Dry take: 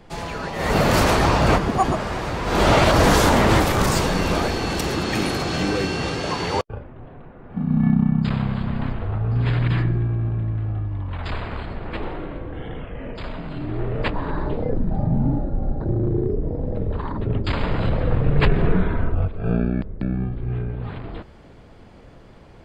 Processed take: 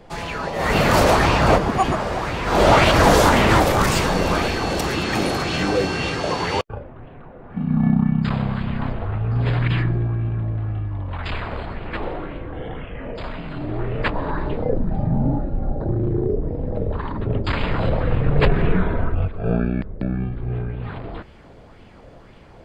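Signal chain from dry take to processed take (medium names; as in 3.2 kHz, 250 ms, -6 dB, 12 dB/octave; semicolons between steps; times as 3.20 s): sweeping bell 1.9 Hz 520–2900 Hz +7 dB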